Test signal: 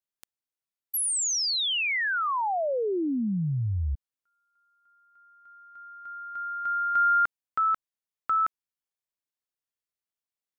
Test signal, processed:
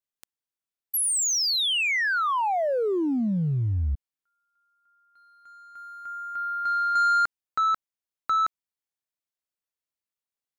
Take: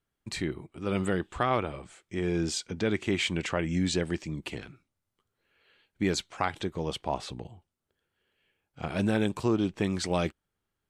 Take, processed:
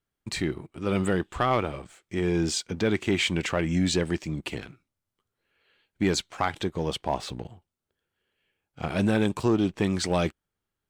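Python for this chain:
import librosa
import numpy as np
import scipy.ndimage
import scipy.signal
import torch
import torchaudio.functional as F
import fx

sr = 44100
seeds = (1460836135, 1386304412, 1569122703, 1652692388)

y = fx.leveller(x, sr, passes=1)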